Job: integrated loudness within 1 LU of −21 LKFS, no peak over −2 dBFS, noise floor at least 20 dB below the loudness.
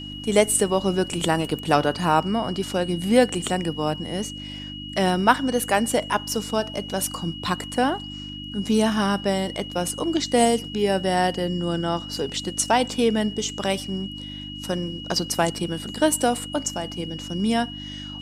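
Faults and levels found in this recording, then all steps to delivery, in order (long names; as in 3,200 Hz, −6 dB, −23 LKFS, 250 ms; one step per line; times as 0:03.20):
mains hum 50 Hz; hum harmonics up to 300 Hz; level of the hum −35 dBFS; interfering tone 2,900 Hz; level of the tone −36 dBFS; integrated loudness −23.5 LKFS; sample peak −1.5 dBFS; target loudness −21.0 LKFS
→ hum removal 50 Hz, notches 6
notch filter 2,900 Hz, Q 30
level +2.5 dB
brickwall limiter −2 dBFS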